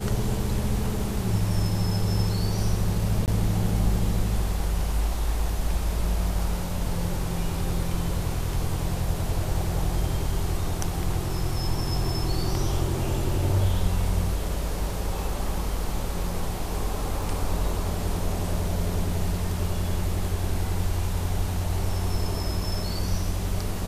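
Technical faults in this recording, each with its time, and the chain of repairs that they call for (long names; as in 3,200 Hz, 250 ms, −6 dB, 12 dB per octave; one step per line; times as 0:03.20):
0:03.26–0:03.28: drop-out 18 ms
0:17.23: drop-out 2.3 ms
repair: repair the gap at 0:03.26, 18 ms
repair the gap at 0:17.23, 2.3 ms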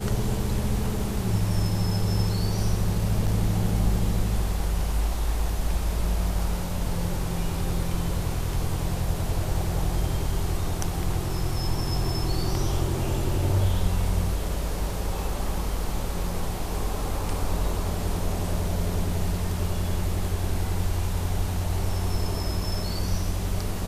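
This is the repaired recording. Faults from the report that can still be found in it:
none of them is left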